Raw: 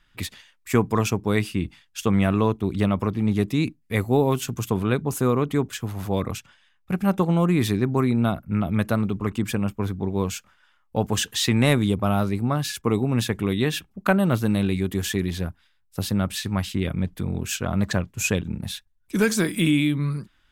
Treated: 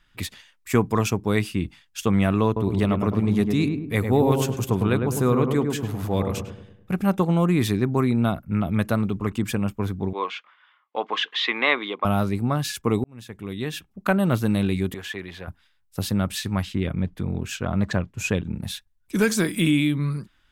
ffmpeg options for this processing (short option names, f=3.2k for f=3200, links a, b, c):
-filter_complex "[0:a]asettb=1/sr,asplit=3[a][b][c];[a]atrim=end=2.464[d];[b]atrim=start=2.46:end=7.01,asetpts=PTS-STARTPTS,afade=t=in:d=0.004:c=qsin,afade=t=out:st=4.546:d=0.004:c=qsin,asplit=2[e][f];[f]adelay=103,lowpass=f=980:p=1,volume=-3.5dB,asplit=2[g][h];[h]adelay=103,lowpass=f=980:p=1,volume=0.51,asplit=2[i][j];[j]adelay=103,lowpass=f=980:p=1,volume=0.51,asplit=2[k][l];[l]adelay=103,lowpass=f=980:p=1,volume=0.51,asplit=2[m][n];[n]adelay=103,lowpass=f=980:p=1,volume=0.51,asplit=2[o][p];[p]adelay=103,lowpass=f=980:p=1,volume=0.51,asplit=2[q][r];[r]adelay=103,lowpass=f=980:p=1,volume=0.51[s];[e][g][i][k][m][o][q][s]amix=inputs=8:normalize=0,atrim=end_sample=200655[t];[c]atrim=start=7.006[u];[d][t]acrossfade=d=0.004:c1=hsin:c2=qsin[v];[v][u]acrossfade=d=0.004:c1=qsin:c2=hsin,asettb=1/sr,asplit=3[w][x][y];[w]atrim=end=10.134[z];[x]atrim=start=10.13:end=12.05,asetpts=PTS-STARTPTS,afade=t=in:d=0.004:c=qsin,afade=t=out:st=1.916:d=0.004:c=qsin,highpass=f=360:w=0.5412,highpass=f=360:w=1.3066,equalizer=f=400:t=q:w=4:g=-3,equalizer=f=580:t=q:w=4:g=-3,equalizer=f=1.1k:t=q:w=4:g=10,equalizer=f=2.1k:t=q:w=4:g=8,equalizer=f=3.4k:t=q:w=4:g=5,lowpass=f=3.7k:w=0.5412,lowpass=f=3.7k:w=1.3066[aa];[y]atrim=start=12.046[ab];[z][aa]acrossfade=d=0.004:c1=hsin:c2=qsin[ac];[ac][ab]acrossfade=d=0.004:c1=qsin:c2=hsin,asettb=1/sr,asplit=3[ad][ae][af];[ad]atrim=end=14.944[ag];[ae]atrim=start=14.94:end=15.48,asetpts=PTS-STARTPTS,afade=t=in:d=0.004:c=qsin,afade=t=out:st=0.536:d=0.004:c=qsin,acrossover=split=490 3400:gain=0.178 1 0.158[ah][ai][aj];[ah][ai][aj]amix=inputs=3:normalize=0[ak];[af]atrim=start=15.476[al];[ag][ak]acrossfade=d=0.004:c1=hsin:c2=qsin[am];[am][al]acrossfade=d=0.004:c1=qsin:c2=hsin,asettb=1/sr,asplit=3[an][ao][ap];[an]atrim=end=16.634[aq];[ao]atrim=start=16.63:end=18.56,asetpts=PTS-STARTPTS,afade=t=in:d=0.004:c=qsin,afade=t=out:st=1.926:d=0.004:c=qsin,lowpass=f=3.3k:p=1[ar];[ap]atrim=start=18.556[as];[aq][ar]acrossfade=d=0.004:c1=hsin:c2=qsin[at];[at][as]acrossfade=d=0.004:c1=qsin:c2=hsin,asplit=2[au][av];[au]atrim=end=13.04,asetpts=PTS-STARTPTS,afade=t=out:st=13.036:d=0.004:c=hsin[aw];[av]atrim=start=13.04,asetpts=PTS-STARTPTS,afade=t=in:d=1.27[ax];[aw][ax]concat=n=2:v=0:a=1"